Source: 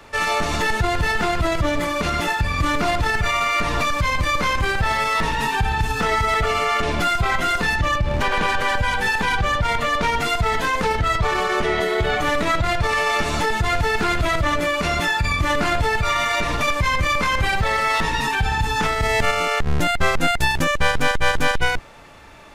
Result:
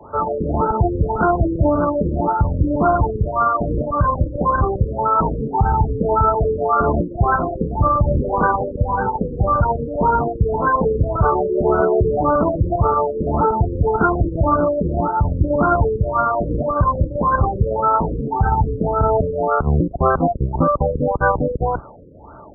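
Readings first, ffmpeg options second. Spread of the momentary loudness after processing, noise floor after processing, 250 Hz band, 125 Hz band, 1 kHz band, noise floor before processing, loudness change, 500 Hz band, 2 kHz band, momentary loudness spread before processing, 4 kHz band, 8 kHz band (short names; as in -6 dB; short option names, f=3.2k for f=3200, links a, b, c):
4 LU, -31 dBFS, +6.5 dB, +6.0 dB, +3.0 dB, -24 dBFS, +2.0 dB, +6.0 dB, -10.5 dB, 2 LU, under -40 dB, under -40 dB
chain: -filter_complex "[0:a]highpass=50,acrossover=split=300|1500|4100[a][b][c][d];[c]aphaser=in_gain=1:out_gain=1:delay=4.9:decay=0.49:speed=1.2:type=triangular[e];[d]aeval=exprs='0.473*sin(PI/2*1.58*val(0)/0.473)':c=same[f];[a][b][e][f]amix=inputs=4:normalize=0,afftfilt=real='re*lt(b*sr/1024,540*pow(1600/540,0.5+0.5*sin(2*PI*1.8*pts/sr)))':imag='im*lt(b*sr/1024,540*pow(1600/540,0.5+0.5*sin(2*PI*1.8*pts/sr)))':win_size=1024:overlap=0.75,volume=6.5dB"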